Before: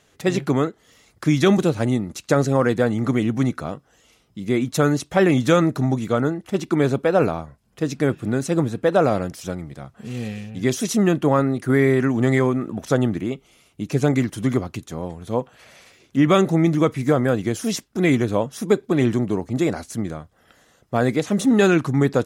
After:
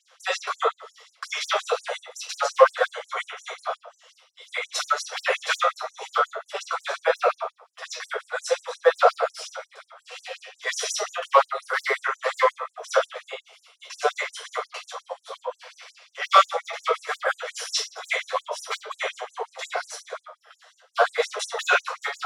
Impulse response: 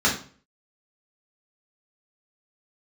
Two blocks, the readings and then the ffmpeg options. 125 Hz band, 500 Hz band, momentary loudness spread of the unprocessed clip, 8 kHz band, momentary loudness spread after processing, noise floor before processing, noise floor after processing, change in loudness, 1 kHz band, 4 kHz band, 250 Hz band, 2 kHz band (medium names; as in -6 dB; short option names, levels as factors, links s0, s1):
under -40 dB, -5.5 dB, 14 LU, 0.0 dB, 17 LU, -60 dBFS, -66 dBFS, -5.0 dB, +3.5 dB, +3.5 dB, under -40 dB, +2.0 dB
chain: -filter_complex "[0:a]lowpass=f=11000:w=0.5412,lowpass=f=11000:w=1.3066,aeval=exprs='0.422*(abs(mod(val(0)/0.422+3,4)-2)-1)':c=same[s0];[1:a]atrim=start_sample=2205,asetrate=35280,aresample=44100[s1];[s0][s1]afir=irnorm=-1:irlink=0,afftfilt=real='re*gte(b*sr/1024,420*pow(6300/420,0.5+0.5*sin(2*PI*5.6*pts/sr)))':imag='im*gte(b*sr/1024,420*pow(6300/420,0.5+0.5*sin(2*PI*5.6*pts/sr)))':win_size=1024:overlap=0.75,volume=0.266"